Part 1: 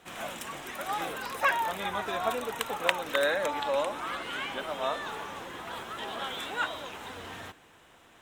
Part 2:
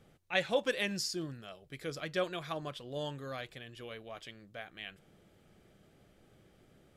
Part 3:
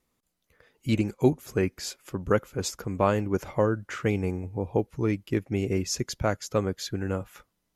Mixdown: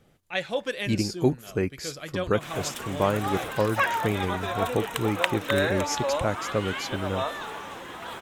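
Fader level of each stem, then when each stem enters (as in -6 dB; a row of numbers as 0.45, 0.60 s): +1.5, +2.0, -1.0 dB; 2.35, 0.00, 0.00 s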